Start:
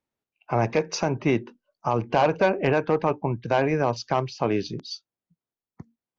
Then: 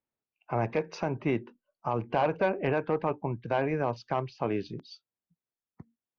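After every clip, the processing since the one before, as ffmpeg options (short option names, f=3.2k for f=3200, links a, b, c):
-af "lowpass=3.2k,volume=-6dB"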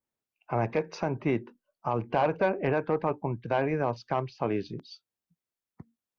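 -af "adynamicequalizer=threshold=0.00141:dfrequency=2900:dqfactor=3.2:tfrequency=2900:tqfactor=3.2:attack=5:release=100:ratio=0.375:range=2.5:mode=cutabove:tftype=bell,volume=1dB"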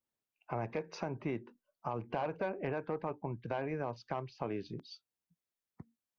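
-af "acompressor=threshold=-34dB:ratio=2,volume=-3.5dB"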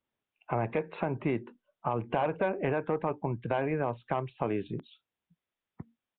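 -af "aresample=8000,aresample=44100,volume=7dB"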